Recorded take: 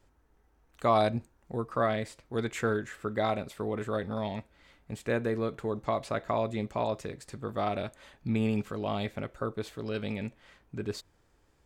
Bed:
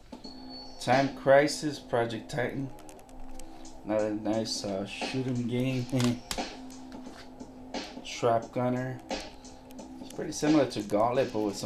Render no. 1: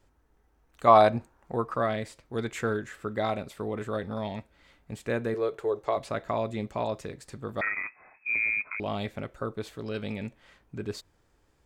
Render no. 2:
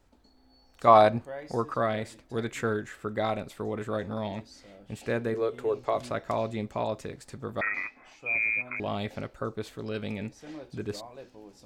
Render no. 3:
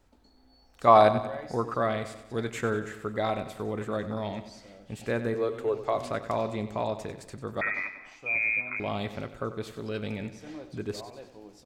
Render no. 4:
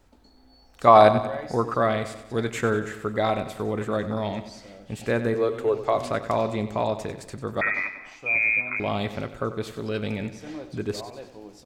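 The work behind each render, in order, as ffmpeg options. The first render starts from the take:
-filter_complex "[0:a]asettb=1/sr,asplit=3[a][b][c];[a]atrim=end=0.874[d];[b]atrim=start=0.87:end=1.74,asetpts=PTS-STARTPTS,afade=t=in:d=0.004:c=qsin,afade=t=out:st=0.866:d=0.004:c=qsin,equalizer=f=990:w=0.55:g=9[e];[c]atrim=start=1.736[f];[d][e]acrossfade=d=0.004:c1=hsin:c2=qsin[g];[g][f]acrossfade=d=0.004:c1=qsin:c2=hsin,asettb=1/sr,asplit=3[h][i][j];[h]atrim=end=5.344[k];[i]atrim=start=5.34:end=5.97,asetpts=PTS-STARTPTS,afade=t=in:d=0.004:c=qsin,afade=t=out:st=0.626:d=0.004:c=qsin,lowshelf=f=310:t=q:w=3:g=-8.5[l];[j]atrim=start=5.966[m];[k][l]acrossfade=d=0.004:c1=hsin:c2=qsin[n];[n][m]acrossfade=d=0.004:c1=qsin:c2=hsin,asettb=1/sr,asplit=3[o][p][q];[o]atrim=end=7.614[r];[p]atrim=start=7.61:end=8.8,asetpts=PTS-STARTPTS,afade=t=in:d=0.004:c=qsin,afade=t=out:st=1.186:d=0.004:c=qsin,lowpass=f=2.2k:t=q:w=0.5098,lowpass=f=2.2k:t=q:w=0.6013,lowpass=f=2.2k:t=q:w=0.9,lowpass=f=2.2k:t=q:w=2.563,afreqshift=-2600[s];[q]atrim=start=8.796[t];[r][s]acrossfade=d=0.004:c1=hsin:c2=qsin[u];[u][t]acrossfade=d=0.004:c1=qsin:c2=hsin"
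-filter_complex "[1:a]volume=-19dB[a];[0:a][a]amix=inputs=2:normalize=0"
-af "aecho=1:1:94|188|282|376|470:0.237|0.126|0.0666|0.0353|0.0187"
-af "volume=5dB,alimiter=limit=-3dB:level=0:latency=1"

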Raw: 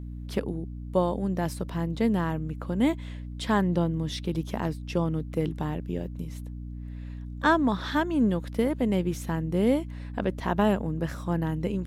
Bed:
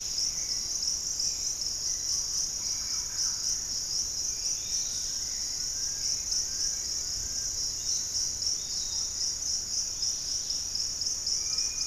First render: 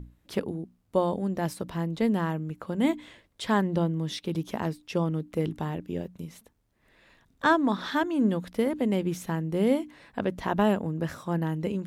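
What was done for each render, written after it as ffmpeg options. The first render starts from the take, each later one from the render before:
-af "bandreject=f=60:t=h:w=6,bandreject=f=120:t=h:w=6,bandreject=f=180:t=h:w=6,bandreject=f=240:t=h:w=6,bandreject=f=300:t=h:w=6"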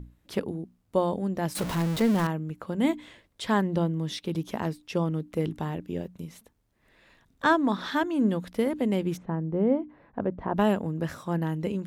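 -filter_complex "[0:a]asettb=1/sr,asplit=3[a][b][c];[a]atrim=end=1.554[d];[b]atrim=start=1.55:end=2.27,asetpts=PTS-STARTPTS,afade=t=in:d=0.004:c=qsin,afade=t=out:st=0.716:d=0.004:c=qsin,aeval=exprs='val(0)+0.5*0.0398*sgn(val(0))':c=same[e];[c]atrim=start=2.266[f];[d][e]acrossfade=d=0.004:c1=hsin:c2=qsin[g];[g][f]acrossfade=d=0.004:c1=qsin:c2=hsin,asplit=3[h][i][j];[h]afade=t=out:st=9.16:d=0.02[k];[i]lowpass=1.1k,afade=t=in:st=9.16:d=0.02,afade=t=out:st=10.56:d=0.02[l];[j]afade=t=in:st=10.56:d=0.02[m];[k][l][m]amix=inputs=3:normalize=0"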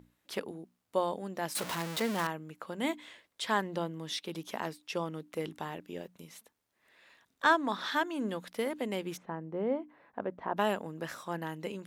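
-af "highpass=f=830:p=1"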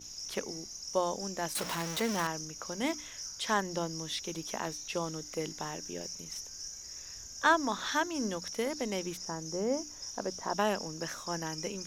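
-filter_complex "[1:a]volume=-13dB[a];[0:a][a]amix=inputs=2:normalize=0"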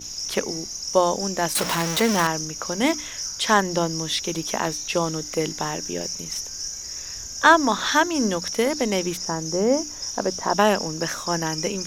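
-af "volume=11.5dB,alimiter=limit=-2dB:level=0:latency=1"

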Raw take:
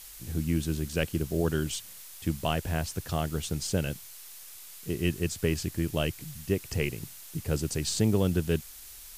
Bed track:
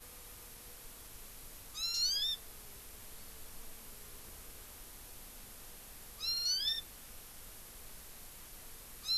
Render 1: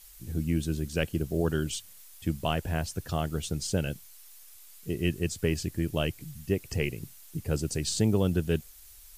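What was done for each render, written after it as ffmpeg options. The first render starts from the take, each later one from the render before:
-af "afftdn=nr=8:nf=-47"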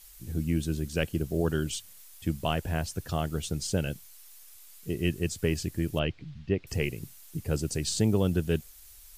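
-filter_complex "[0:a]asettb=1/sr,asplit=3[a][b][c];[a]atrim=end=5.994[d];[b]atrim=start=5.99:end=6.67,asetpts=PTS-STARTPTS,afade=t=in:d=0.004:c=qsin,afade=t=out:st=0.676:d=0.004:c=qsin,lowpass=f=4.1k:w=0.5412,lowpass=f=4.1k:w=1.3066[e];[c]atrim=start=6.666[f];[d][e]acrossfade=d=0.004:c1=hsin:c2=qsin[g];[g][f]acrossfade=d=0.004:c1=qsin:c2=hsin"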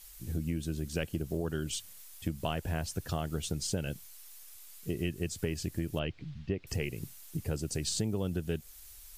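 -af "acompressor=threshold=-29dB:ratio=6"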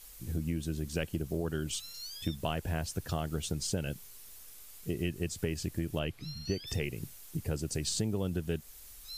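-filter_complex "[1:a]volume=-11.5dB[a];[0:a][a]amix=inputs=2:normalize=0"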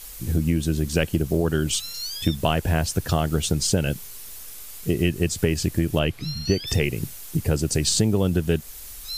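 -af "volume=12dB"

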